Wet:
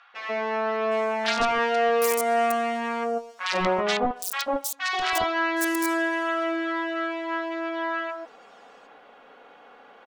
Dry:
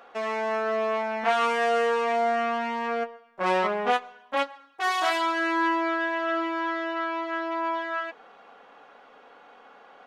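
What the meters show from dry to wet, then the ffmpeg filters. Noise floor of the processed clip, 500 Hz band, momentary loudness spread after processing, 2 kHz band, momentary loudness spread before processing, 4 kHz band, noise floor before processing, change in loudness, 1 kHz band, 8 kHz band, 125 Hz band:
−52 dBFS, +1.5 dB, 7 LU, +1.0 dB, 7 LU, +3.5 dB, −53 dBFS, +1.0 dB, −0.5 dB, +12.0 dB, can't be measured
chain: -filter_complex "[0:a]aeval=exprs='(mod(5.31*val(0)+1,2)-1)/5.31':channel_layout=same,acrossover=split=1100|5700[link_01][link_02][link_03];[link_01]adelay=140[link_04];[link_03]adelay=760[link_05];[link_04][link_02][link_05]amix=inputs=3:normalize=0,volume=2.5dB"

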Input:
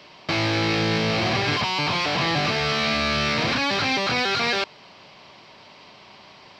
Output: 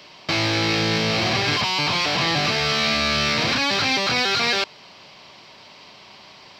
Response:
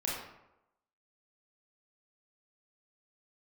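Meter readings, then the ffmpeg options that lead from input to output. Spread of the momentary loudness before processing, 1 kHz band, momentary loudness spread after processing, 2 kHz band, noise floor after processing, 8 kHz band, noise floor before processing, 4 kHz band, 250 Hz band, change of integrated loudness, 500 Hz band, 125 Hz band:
2 LU, +0.5 dB, 2 LU, +2.0 dB, −46 dBFS, +5.5 dB, −48 dBFS, +4.0 dB, 0.0 dB, +2.5 dB, 0.0 dB, 0.0 dB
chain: -af "highshelf=frequency=3900:gain=8"

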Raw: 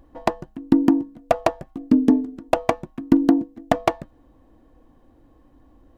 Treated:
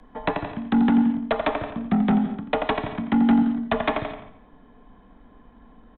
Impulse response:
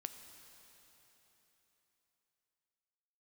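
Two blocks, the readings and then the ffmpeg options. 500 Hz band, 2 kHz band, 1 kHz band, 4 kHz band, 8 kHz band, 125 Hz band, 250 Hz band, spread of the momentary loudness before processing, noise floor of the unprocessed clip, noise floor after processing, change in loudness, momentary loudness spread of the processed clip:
−3.5 dB, +3.5 dB, −1.5 dB, +2.5 dB, can't be measured, +2.5 dB, −1.0 dB, 10 LU, −56 dBFS, −53 dBFS, −1.5 dB, 11 LU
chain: -filter_complex "[0:a]equalizer=frequency=620:width=2.2:gain=-5.5,bandreject=frequency=2800:width=7,acrossover=split=180|600[link_01][link_02][link_03];[link_03]acontrast=75[link_04];[link_01][link_02][link_04]amix=inputs=3:normalize=0,aecho=1:1:86|172|258|344:0.266|0.109|0.0447|0.0183,aresample=8000,asoftclip=type=tanh:threshold=-18.5dB,aresample=44100,afreqshift=-46[link_05];[1:a]atrim=start_sample=2205,afade=type=out:start_time=0.17:duration=0.01,atrim=end_sample=7938,asetrate=22932,aresample=44100[link_06];[link_05][link_06]afir=irnorm=-1:irlink=0,volume=3.5dB"

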